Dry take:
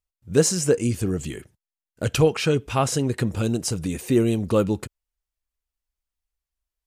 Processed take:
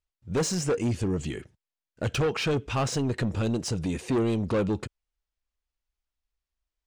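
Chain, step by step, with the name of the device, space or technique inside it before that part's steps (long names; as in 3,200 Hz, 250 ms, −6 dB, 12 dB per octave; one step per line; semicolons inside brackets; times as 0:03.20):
low-pass filter 5,900 Hz 12 dB per octave
saturation between pre-emphasis and de-emphasis (high-shelf EQ 4,300 Hz +6.5 dB; soft clipping −21 dBFS, distortion −8 dB; high-shelf EQ 4,300 Hz −6.5 dB)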